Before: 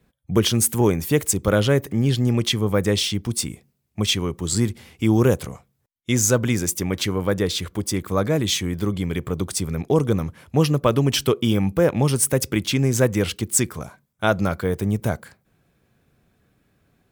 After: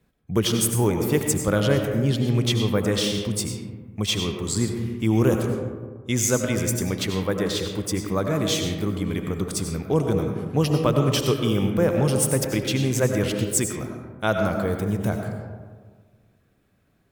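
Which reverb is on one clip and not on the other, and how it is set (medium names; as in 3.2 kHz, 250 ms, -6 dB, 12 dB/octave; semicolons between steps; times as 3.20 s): algorithmic reverb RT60 1.6 s, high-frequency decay 0.35×, pre-delay 55 ms, DRR 3.5 dB; trim -3.5 dB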